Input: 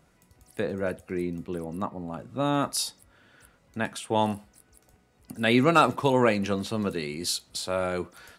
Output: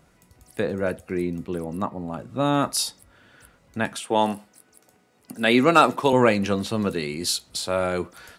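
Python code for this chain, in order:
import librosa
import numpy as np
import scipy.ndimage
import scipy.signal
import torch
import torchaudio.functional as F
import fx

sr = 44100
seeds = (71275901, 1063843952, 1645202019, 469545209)

y = fx.highpass(x, sr, hz=190.0, slope=12, at=(4.0, 6.13))
y = y * 10.0 ** (4.0 / 20.0)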